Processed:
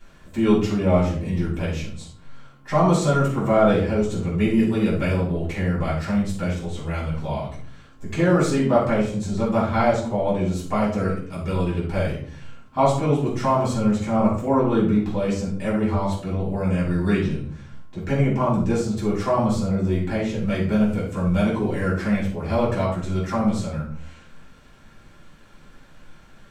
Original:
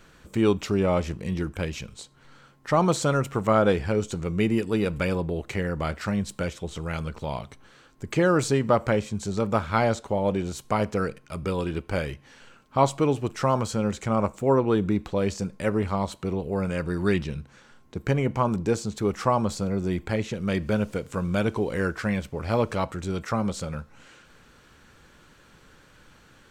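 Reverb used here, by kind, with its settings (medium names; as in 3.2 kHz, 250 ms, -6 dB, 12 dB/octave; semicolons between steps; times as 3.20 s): simulated room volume 560 m³, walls furnished, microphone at 9 m; trim -10 dB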